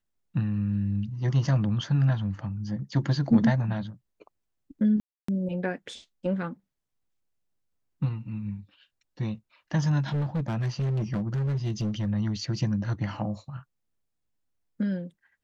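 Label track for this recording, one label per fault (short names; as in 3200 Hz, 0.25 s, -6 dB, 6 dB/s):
5.000000	5.280000	gap 0.284 s
10.080000	12.070000	clipped -24.5 dBFS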